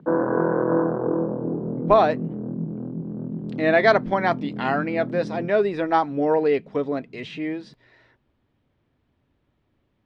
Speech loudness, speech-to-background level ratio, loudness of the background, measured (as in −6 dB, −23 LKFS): −22.5 LKFS, 5.0 dB, −27.5 LKFS